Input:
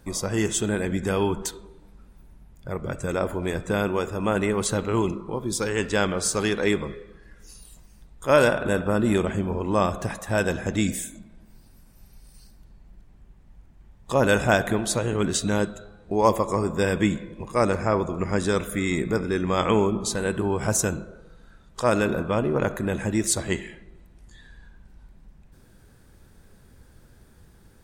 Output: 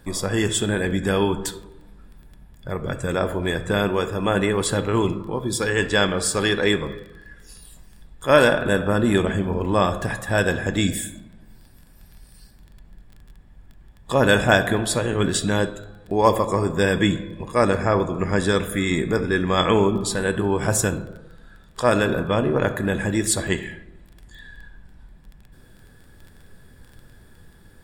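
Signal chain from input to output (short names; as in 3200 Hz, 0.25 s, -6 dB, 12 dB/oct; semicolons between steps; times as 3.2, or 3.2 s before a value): on a send at -12 dB: reverb RT60 0.50 s, pre-delay 7 ms; on the sum: crackle 11/s -38 dBFS; notch 6200 Hz, Q 6.7; small resonant body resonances 1700/3400 Hz, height 11 dB, ringing for 35 ms; gain +2.5 dB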